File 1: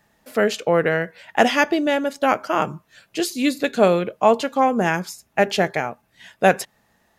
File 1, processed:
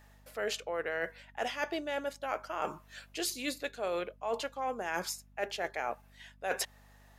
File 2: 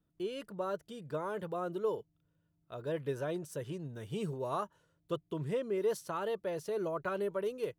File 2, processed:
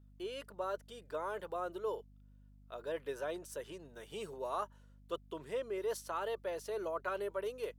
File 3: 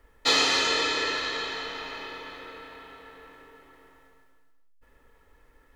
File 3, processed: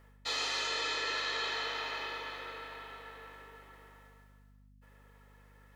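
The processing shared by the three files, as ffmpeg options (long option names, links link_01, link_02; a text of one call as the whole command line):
ffmpeg -i in.wav -af "highpass=470,areverse,acompressor=threshold=-31dB:ratio=16,areverse,aeval=exprs='val(0)+0.00112*(sin(2*PI*50*n/s)+sin(2*PI*2*50*n/s)/2+sin(2*PI*3*50*n/s)/3+sin(2*PI*4*50*n/s)/4+sin(2*PI*5*50*n/s)/5)':channel_layout=same" out.wav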